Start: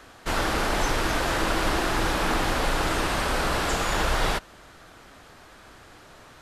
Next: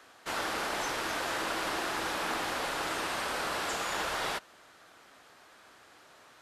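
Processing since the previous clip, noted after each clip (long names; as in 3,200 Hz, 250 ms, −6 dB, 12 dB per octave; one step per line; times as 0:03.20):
high-pass filter 470 Hz 6 dB per octave
level −6 dB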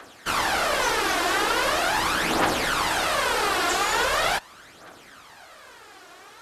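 phase shifter 0.41 Hz, delay 2.9 ms, feedback 55%
level +8.5 dB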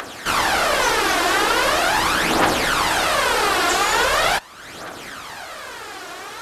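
upward compression, threshold −29 dBFS
level +5 dB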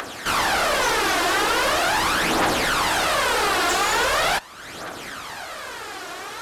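soft clipping −14.5 dBFS, distortion −15 dB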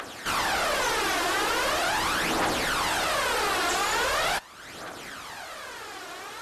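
level −5 dB
MP3 56 kbit/s 48,000 Hz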